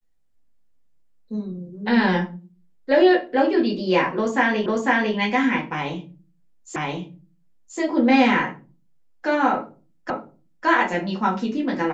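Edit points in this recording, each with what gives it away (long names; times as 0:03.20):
0:04.66: the same again, the last 0.5 s
0:06.76: the same again, the last 1.03 s
0:10.10: the same again, the last 0.56 s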